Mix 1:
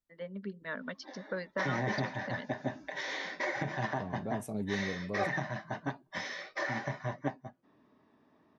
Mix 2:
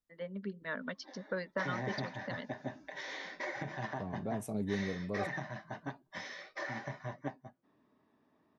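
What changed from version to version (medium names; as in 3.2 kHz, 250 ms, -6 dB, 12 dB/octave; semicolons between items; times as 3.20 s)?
background -5.5 dB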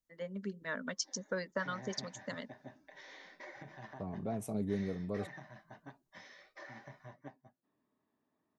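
first voice: remove steep low-pass 4.4 kHz 36 dB/octave; background -10.5 dB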